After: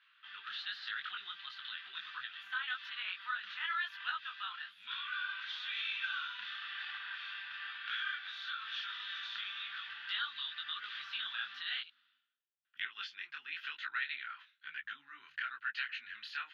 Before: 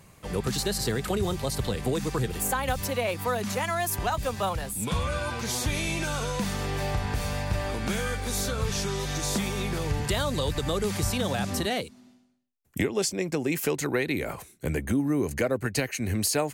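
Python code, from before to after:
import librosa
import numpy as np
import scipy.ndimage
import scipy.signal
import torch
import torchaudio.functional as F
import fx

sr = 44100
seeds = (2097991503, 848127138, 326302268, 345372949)

y = scipy.signal.sosfilt(scipy.signal.ellip(3, 1.0, 50, [1400.0, 3500.0], 'bandpass', fs=sr, output='sos'), x)
y = fx.peak_eq(y, sr, hz=2200.0, db=-13.0, octaves=0.29)
y = fx.detune_double(y, sr, cents=35)
y = F.gain(torch.from_numpy(y), 4.0).numpy()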